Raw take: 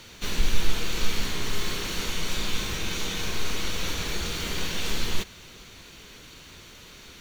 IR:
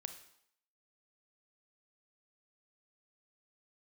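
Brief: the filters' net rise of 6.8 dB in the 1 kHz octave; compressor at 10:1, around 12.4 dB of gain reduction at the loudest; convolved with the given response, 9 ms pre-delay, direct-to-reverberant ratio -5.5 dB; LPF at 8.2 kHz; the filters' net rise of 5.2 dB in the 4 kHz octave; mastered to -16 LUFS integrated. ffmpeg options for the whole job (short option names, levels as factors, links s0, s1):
-filter_complex "[0:a]lowpass=8200,equalizer=f=1000:t=o:g=8,equalizer=f=4000:t=o:g=6,acompressor=threshold=0.0631:ratio=10,asplit=2[s0][s1];[1:a]atrim=start_sample=2205,adelay=9[s2];[s1][s2]afir=irnorm=-1:irlink=0,volume=2.66[s3];[s0][s3]amix=inputs=2:normalize=0,volume=2.51"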